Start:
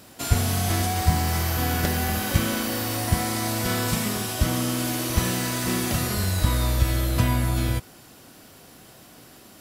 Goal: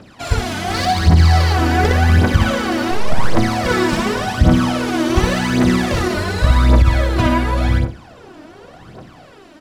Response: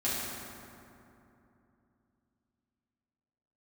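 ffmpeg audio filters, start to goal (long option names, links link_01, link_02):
-filter_complex "[0:a]asettb=1/sr,asplit=3[link_01][link_02][link_03];[link_01]atrim=end=0.744[link_04];[link_02]atrim=start=0.74:end=1.53,asetpts=PTS-STARTPTS,afade=type=in:duration=0.004:curve=qsin,afade=type=out:start_time=0.786:duration=0.004:curve=qsin,equalizer=frequency=4300:width=3.6:gain=9.5[link_05];[link_03]atrim=start=1.526[link_06];[link_04][link_05]acrossfade=duration=0.004:curve1=hsin:curve2=qsin[link_07];[link_07][link_06]acrossfade=duration=0.004:curve1=qsin:curve2=hsin,asettb=1/sr,asplit=3[link_08][link_09][link_10];[link_08]atrim=end=2.914[link_11];[link_09]atrim=start=2.91:end=3.37,asetpts=PTS-STARTPTS,afade=type=in:duration=0.004:curve=qsin,afade=type=out:start_time=0.456:duration=0.004:curve=qsin,aeval=exprs='abs(val(0))':channel_layout=same[link_12];[link_10]atrim=start=3.366[link_13];[link_11][link_12]acrossfade=duration=0.004:curve1=hsin:curve2=qsin[link_14];[link_14][link_13]acrossfade=duration=0.004:curve1=qsin:curve2=hsin,acrossover=split=1400[link_15][link_16];[link_15]dynaudnorm=framelen=360:gausssize=5:maxgain=6dB[link_17];[link_17][link_16]amix=inputs=2:normalize=0,lowshelf=frequency=180:gain=-3.5,asplit=2[link_18][link_19];[link_19]aecho=0:1:60|120|180|240:0.668|0.194|0.0562|0.0163[link_20];[link_18][link_20]amix=inputs=2:normalize=0,adynamicsmooth=sensitivity=1.5:basefreq=3600,aphaser=in_gain=1:out_gain=1:delay=3.4:decay=0.65:speed=0.89:type=triangular,alimiter=level_in=5dB:limit=-1dB:release=50:level=0:latency=1,volume=-1dB"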